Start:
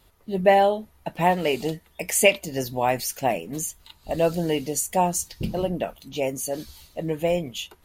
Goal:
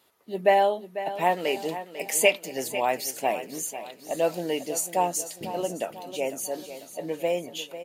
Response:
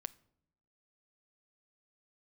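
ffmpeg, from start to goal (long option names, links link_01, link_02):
-filter_complex "[0:a]highpass=290,asplit=2[link_01][link_02];[link_02]aecho=0:1:496|992|1488|1984|2480:0.237|0.116|0.0569|0.0279|0.0137[link_03];[link_01][link_03]amix=inputs=2:normalize=0,volume=-2.5dB"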